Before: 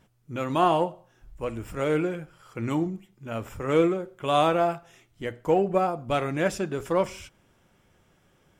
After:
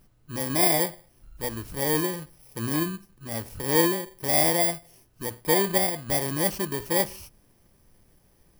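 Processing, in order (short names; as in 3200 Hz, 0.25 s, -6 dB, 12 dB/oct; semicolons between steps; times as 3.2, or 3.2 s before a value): FFT order left unsorted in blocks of 32 samples; added noise brown -62 dBFS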